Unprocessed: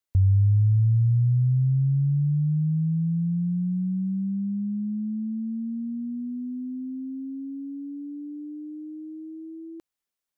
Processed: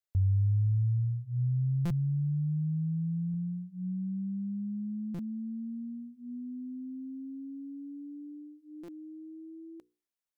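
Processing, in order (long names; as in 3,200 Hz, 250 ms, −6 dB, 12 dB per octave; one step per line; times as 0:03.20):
mains-hum notches 60/120/180/240/300/360/420/480 Hz
buffer that repeats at 0:01.85/0:03.29/0:05.14/0:08.83, samples 256, times 8
level −7 dB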